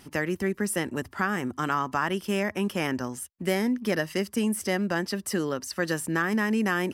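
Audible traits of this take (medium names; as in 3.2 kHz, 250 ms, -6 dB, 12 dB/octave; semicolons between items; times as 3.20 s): noise floor -54 dBFS; spectral tilt -4.5 dB/octave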